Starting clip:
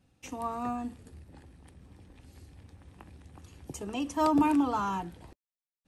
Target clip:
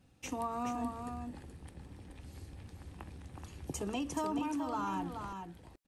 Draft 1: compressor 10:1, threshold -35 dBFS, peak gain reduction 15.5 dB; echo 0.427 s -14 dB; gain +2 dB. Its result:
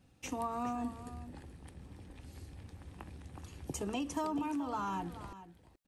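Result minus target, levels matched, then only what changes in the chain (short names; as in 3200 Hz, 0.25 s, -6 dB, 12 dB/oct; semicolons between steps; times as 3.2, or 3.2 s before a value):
echo-to-direct -7.5 dB
change: echo 0.427 s -6.5 dB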